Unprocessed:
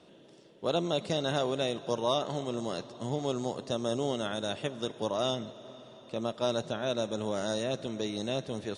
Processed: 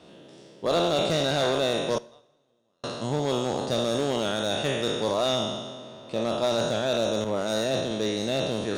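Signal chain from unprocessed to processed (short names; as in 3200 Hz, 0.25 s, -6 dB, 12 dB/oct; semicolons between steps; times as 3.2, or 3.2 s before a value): spectral trails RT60 1.41 s; 1.98–2.84 gate -19 dBFS, range -46 dB; one-sided clip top -22.5 dBFS; two-slope reverb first 0.72 s, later 3 s, from -26 dB, DRR 18 dB; 7.24–7.91 three-band expander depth 100%; gain +4.5 dB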